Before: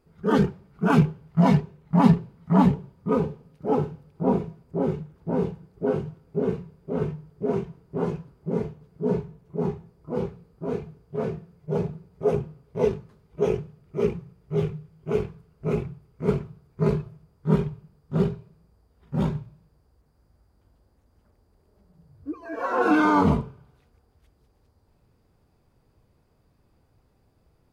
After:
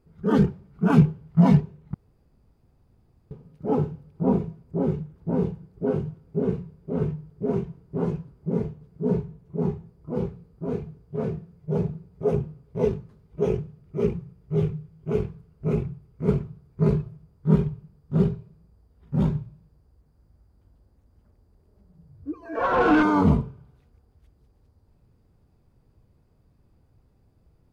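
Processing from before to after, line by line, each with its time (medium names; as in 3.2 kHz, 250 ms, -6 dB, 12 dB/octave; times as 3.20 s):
1.94–3.31 s: room tone
22.55–23.03 s: overdrive pedal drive 19 dB, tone 1.7 kHz, clips at -8.5 dBFS
whole clip: bass shelf 330 Hz +9 dB; trim -4.5 dB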